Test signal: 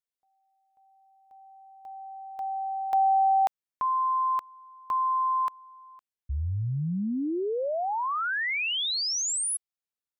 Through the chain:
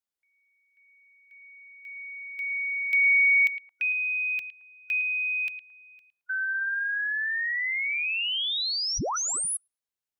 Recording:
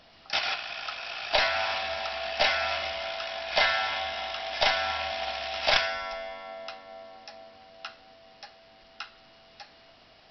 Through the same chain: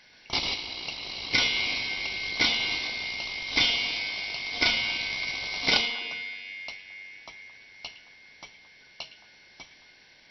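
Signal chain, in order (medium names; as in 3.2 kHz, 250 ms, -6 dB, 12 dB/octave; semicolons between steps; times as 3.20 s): four frequency bands reordered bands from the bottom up 4123; repeats whose band climbs or falls 110 ms, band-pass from 2.6 kHz, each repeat -1.4 oct, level -11.5 dB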